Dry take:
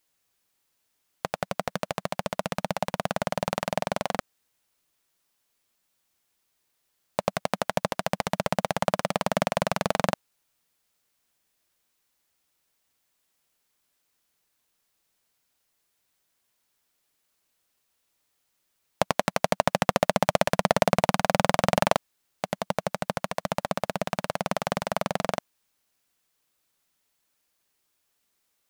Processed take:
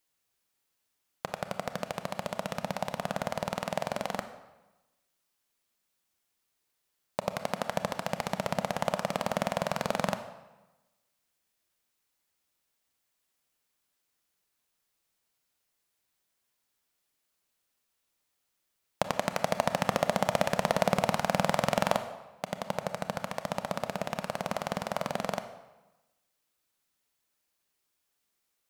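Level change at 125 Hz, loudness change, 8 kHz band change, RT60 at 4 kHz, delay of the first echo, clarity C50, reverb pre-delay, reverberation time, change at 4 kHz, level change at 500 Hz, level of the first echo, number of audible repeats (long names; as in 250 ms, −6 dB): −4.5 dB, −4.5 dB, −4.5 dB, 0.80 s, no echo audible, 10.5 dB, 26 ms, 1.1 s, −4.5 dB, −4.5 dB, no echo audible, no echo audible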